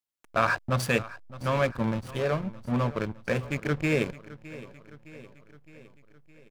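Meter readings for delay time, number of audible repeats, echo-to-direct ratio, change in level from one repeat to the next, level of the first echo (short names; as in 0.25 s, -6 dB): 0.613 s, 4, -16.0 dB, -4.5 dB, -17.5 dB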